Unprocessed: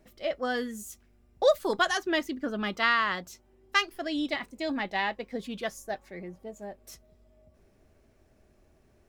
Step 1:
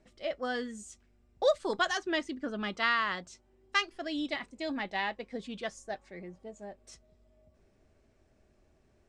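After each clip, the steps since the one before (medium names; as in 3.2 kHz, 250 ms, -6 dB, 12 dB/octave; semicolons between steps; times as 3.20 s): Chebyshev low-pass 8.6 kHz, order 4; trim -3 dB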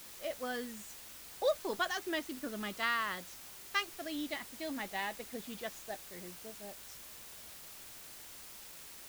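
added noise white -46 dBFS; trim -5 dB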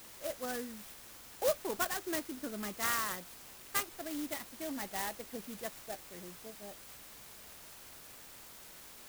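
sampling jitter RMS 0.086 ms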